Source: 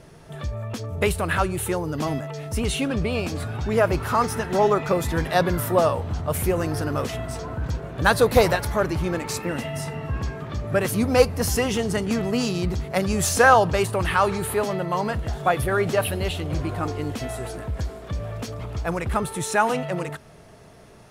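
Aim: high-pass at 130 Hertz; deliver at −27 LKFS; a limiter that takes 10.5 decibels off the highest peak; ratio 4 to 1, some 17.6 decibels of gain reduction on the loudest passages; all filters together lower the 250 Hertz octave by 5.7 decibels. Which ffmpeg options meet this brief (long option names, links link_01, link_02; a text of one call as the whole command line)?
ffmpeg -i in.wav -af "highpass=130,equalizer=frequency=250:width_type=o:gain=-7.5,acompressor=threshold=-33dB:ratio=4,volume=10.5dB,alimiter=limit=-17dB:level=0:latency=1" out.wav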